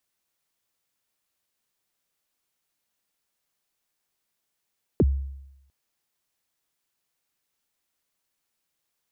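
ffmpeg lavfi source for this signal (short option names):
-f lavfi -i "aevalsrc='0.211*pow(10,-3*t/0.88)*sin(2*PI*(490*0.039/log(68/490)*(exp(log(68/490)*min(t,0.039)/0.039)-1)+68*max(t-0.039,0)))':d=0.7:s=44100"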